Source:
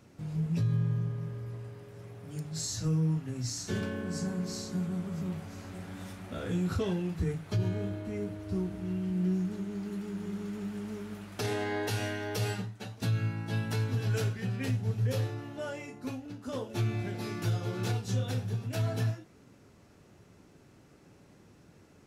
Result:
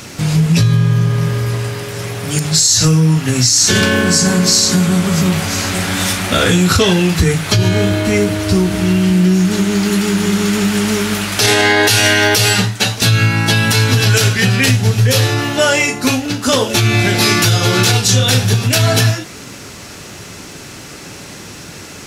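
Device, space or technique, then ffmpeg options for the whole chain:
mastering chain: -af "equalizer=f=5500:t=o:w=2.3:g=3,acompressor=threshold=0.0251:ratio=3,tiltshelf=f=1200:g=-6,alimiter=level_in=28.2:limit=0.891:release=50:level=0:latency=1,volume=0.891"

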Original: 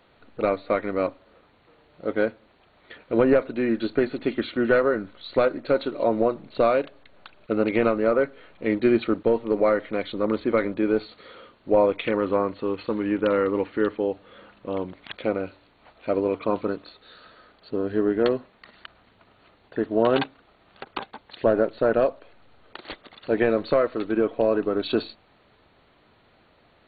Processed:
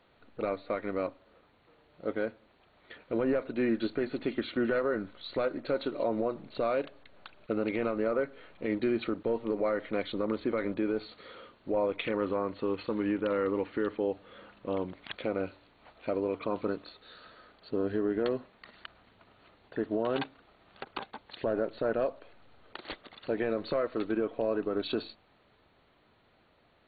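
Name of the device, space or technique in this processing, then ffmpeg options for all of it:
low-bitrate web radio: -af "dynaudnorm=f=620:g=11:m=1.41,alimiter=limit=0.188:level=0:latency=1:release=118,volume=0.531" -ar 11025 -c:a libmp3lame -b:a 48k

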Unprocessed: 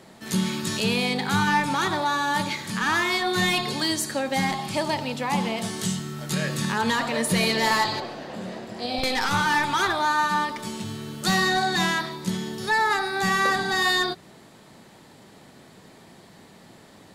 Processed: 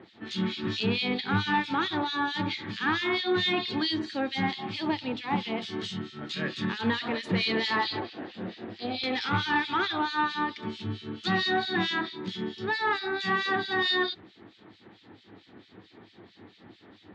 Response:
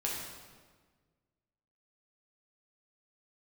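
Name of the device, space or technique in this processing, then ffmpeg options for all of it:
guitar amplifier with harmonic tremolo: -filter_complex "[0:a]acrossover=split=2300[s0][s1];[s0]aeval=exprs='val(0)*(1-1/2+1/2*cos(2*PI*4.5*n/s))':c=same[s2];[s1]aeval=exprs='val(0)*(1-1/2-1/2*cos(2*PI*4.5*n/s))':c=same[s3];[s2][s3]amix=inputs=2:normalize=0,asoftclip=type=tanh:threshold=0.126,highpass=81,equalizer=f=100:t=q:w=4:g=7,equalizer=f=150:t=q:w=4:g=-10,equalizer=f=320:t=q:w=4:g=7,equalizer=f=600:t=q:w=4:g=-8,equalizer=f=1000:t=q:w=4:g=-4,equalizer=f=3500:t=q:w=4:g=4,lowpass=f=4200:w=0.5412,lowpass=f=4200:w=1.3066,volume=1.19"

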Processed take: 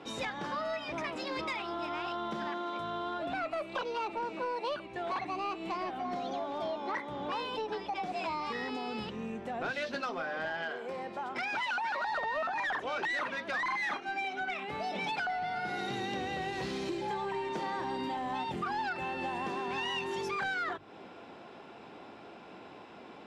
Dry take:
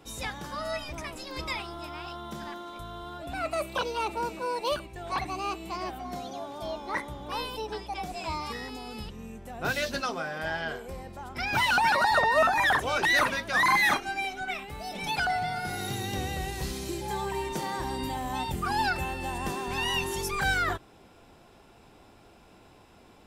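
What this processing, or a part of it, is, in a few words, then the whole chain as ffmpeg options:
AM radio: -filter_complex "[0:a]highpass=200,lowpass=3400,acompressor=threshold=0.0112:ratio=5,asoftclip=type=tanh:threshold=0.0224,asettb=1/sr,asplit=3[s0][s1][s2];[s0]atrim=end=10.634[s3];[s1]atrim=start=10.63:end=12.07,asetpts=PTS-STARTPTS,afade=t=in:d=0.004:c=qsin,afade=t=out:st=1.436:d=0.004:c=qsin,highpass=f=290:p=1[s4];[s2]atrim=start=12.066[s5];[s3][s4]acrossfade=d=0.004:c1=hsin:c2=qsin[s6];[s6][s5]acrossfade=d=0.004:c1=qsin:c2=hsin,bandreject=f=50:t=h:w=6,bandreject=f=100:t=h:w=6,bandreject=f=150:t=h:w=6,volume=2.24"

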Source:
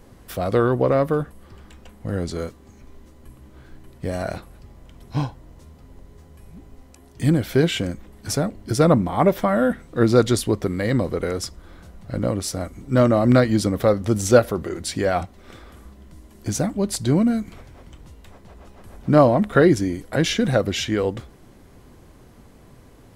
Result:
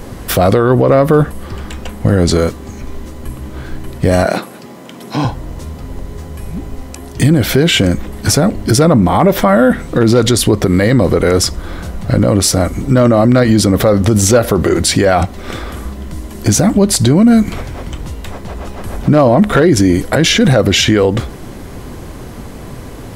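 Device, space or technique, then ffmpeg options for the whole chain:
loud club master: -filter_complex "[0:a]acompressor=threshold=0.0631:ratio=1.5,asoftclip=type=hard:threshold=0.266,alimiter=level_in=10.6:limit=0.891:release=50:level=0:latency=1,asettb=1/sr,asplit=3[s0][s1][s2];[s0]atrim=end=4.254[s3];[s1]atrim=start=4.25:end=5.25,asetpts=PTS-STARTPTS,afade=t=in:d=0.004:c=qsin,afade=t=out:st=0.996:d=0.004:c=qsin,highpass=f=180:w=0.5412,highpass=f=180:w=1.3066[s4];[s2]atrim=start=5.246[s5];[s3][s4]acrossfade=d=0.004:c1=hsin:c2=qsin[s6];[s6][s5]acrossfade=d=0.004:c1=qsin:c2=hsin,volume=0.891"

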